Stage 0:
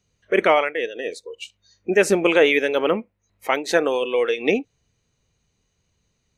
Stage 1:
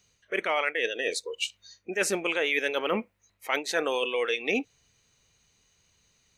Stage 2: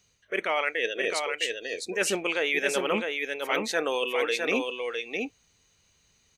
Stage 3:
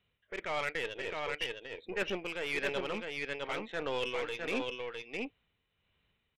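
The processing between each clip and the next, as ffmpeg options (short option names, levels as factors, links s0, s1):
-af "tiltshelf=f=830:g=-5.5,areverse,acompressor=threshold=0.0447:ratio=6,areverse,volume=1.33"
-af "aecho=1:1:658:0.596"
-af "aresample=8000,asoftclip=type=hard:threshold=0.1,aresample=44100,aeval=exprs='0.168*(cos(1*acos(clip(val(0)/0.168,-1,1)))-cos(1*PI/2))+0.015*(cos(6*acos(clip(val(0)/0.168,-1,1)))-cos(6*PI/2))':c=same,tremolo=f=1.5:d=0.45,volume=0.501"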